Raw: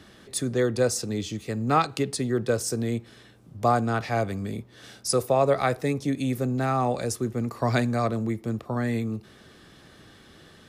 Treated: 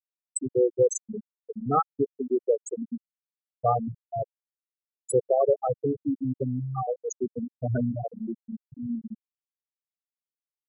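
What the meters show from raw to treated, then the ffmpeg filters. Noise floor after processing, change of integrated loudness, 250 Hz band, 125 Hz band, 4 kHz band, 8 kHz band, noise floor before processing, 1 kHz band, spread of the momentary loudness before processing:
below −85 dBFS, −2.0 dB, −4.0 dB, −6.0 dB, below −40 dB, −4.5 dB, −53 dBFS, −3.5 dB, 9 LU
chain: -af "superequalizer=7b=1.41:15b=3.55,afftfilt=real='re*gte(hypot(re,im),0.398)':imag='im*gte(hypot(re,im),0.398)':win_size=1024:overlap=0.75"

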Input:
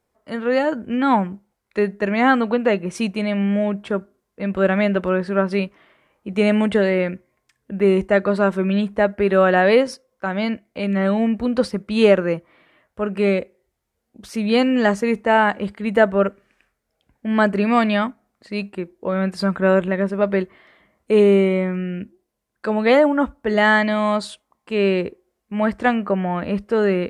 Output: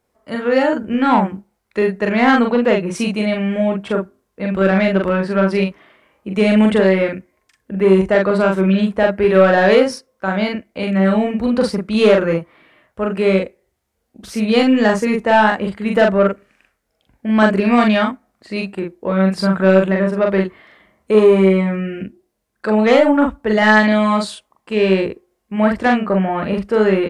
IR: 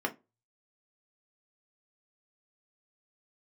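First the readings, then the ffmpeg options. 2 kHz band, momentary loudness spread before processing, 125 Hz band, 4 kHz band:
+3.5 dB, 13 LU, +4.5 dB, +4.0 dB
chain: -filter_complex "[0:a]asoftclip=type=tanh:threshold=-8.5dB,asplit=2[link_01][link_02];[link_02]adelay=42,volume=-2.5dB[link_03];[link_01][link_03]amix=inputs=2:normalize=0,volume=3dB"

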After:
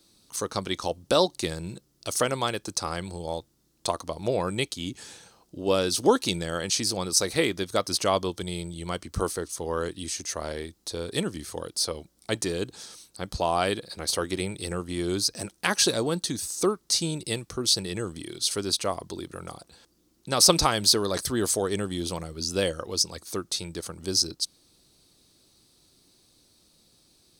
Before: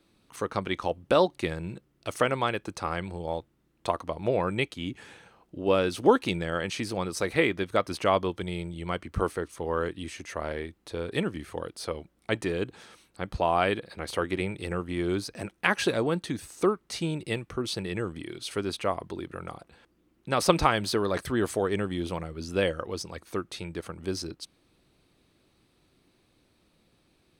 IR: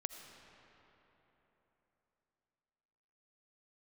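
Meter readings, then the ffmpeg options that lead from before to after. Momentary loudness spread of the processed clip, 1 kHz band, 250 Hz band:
13 LU, −1.0 dB, 0.0 dB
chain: -af "highshelf=frequency=3500:width_type=q:width=1.5:gain=12.5"

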